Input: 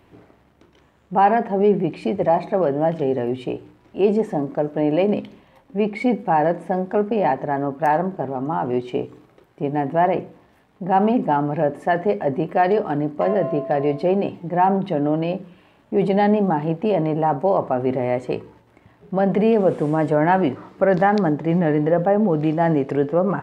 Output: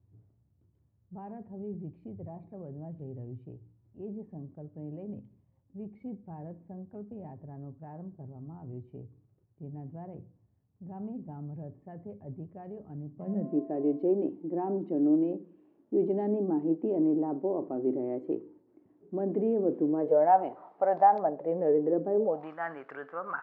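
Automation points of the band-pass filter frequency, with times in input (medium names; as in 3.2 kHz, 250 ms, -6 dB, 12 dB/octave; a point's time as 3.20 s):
band-pass filter, Q 4.9
13.05 s 100 Hz
13.63 s 320 Hz
19.86 s 320 Hz
20.37 s 750 Hz
21.14 s 750 Hz
22.10 s 310 Hz
22.55 s 1.4 kHz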